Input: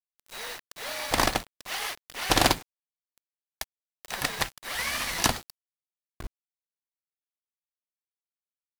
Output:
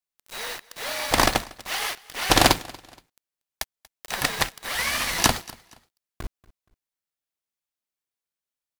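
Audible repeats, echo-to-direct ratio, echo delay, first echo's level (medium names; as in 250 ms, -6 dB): 2, -22.5 dB, 236 ms, -23.0 dB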